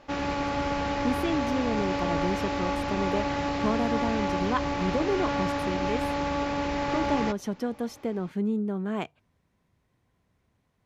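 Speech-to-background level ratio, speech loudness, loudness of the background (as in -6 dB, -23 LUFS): -2.5 dB, -31.5 LUFS, -29.0 LUFS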